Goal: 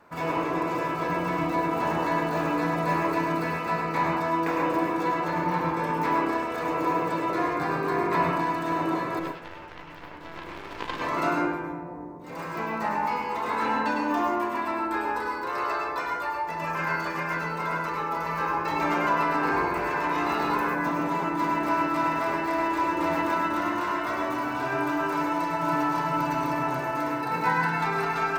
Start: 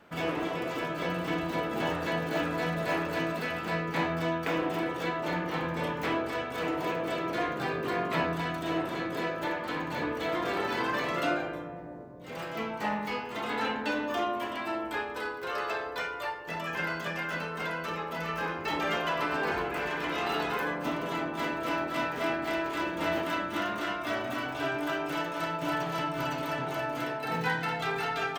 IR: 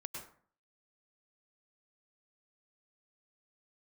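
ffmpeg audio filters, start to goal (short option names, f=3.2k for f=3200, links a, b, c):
-filter_complex "[0:a]equalizer=f=200:t=o:w=0.33:g=-5,equalizer=f=1k:t=o:w=0.33:g=9,equalizer=f=3.15k:t=o:w=0.33:g=-11,asplit=3[a][b][c];[a]afade=t=out:st=9.18:d=0.02[d];[b]aeval=exprs='0.178*(cos(1*acos(clip(val(0)/0.178,-1,1)))-cos(1*PI/2))+0.0708*(cos(3*acos(clip(val(0)/0.178,-1,1)))-cos(3*PI/2))+0.00794*(cos(5*acos(clip(val(0)/0.178,-1,1)))-cos(5*PI/2))+0.00708*(cos(6*acos(clip(val(0)/0.178,-1,1)))-cos(6*PI/2))':c=same,afade=t=in:st=9.18:d=0.02,afade=t=out:st=11:d=0.02[e];[c]afade=t=in:st=11:d=0.02[f];[d][e][f]amix=inputs=3:normalize=0[g];[1:a]atrim=start_sample=2205[h];[g][h]afir=irnorm=-1:irlink=0,volume=5dB"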